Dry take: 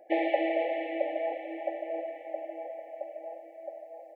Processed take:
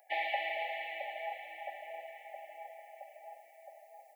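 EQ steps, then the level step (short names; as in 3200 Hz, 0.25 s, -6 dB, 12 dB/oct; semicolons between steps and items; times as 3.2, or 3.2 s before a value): resonant high-pass 940 Hz, resonance Q 5.5; differentiator; +9.5 dB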